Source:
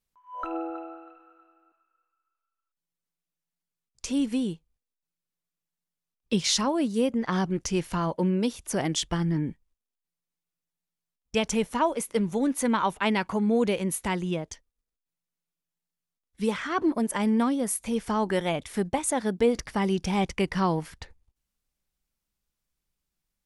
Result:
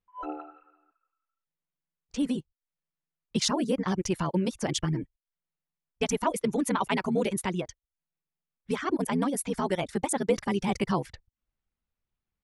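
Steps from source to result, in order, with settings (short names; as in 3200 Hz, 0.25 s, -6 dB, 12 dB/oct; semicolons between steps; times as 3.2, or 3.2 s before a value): reverb removal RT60 0.52 s; low-pass opened by the level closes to 2600 Hz, open at -26 dBFS; granular stretch 0.53×, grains 25 ms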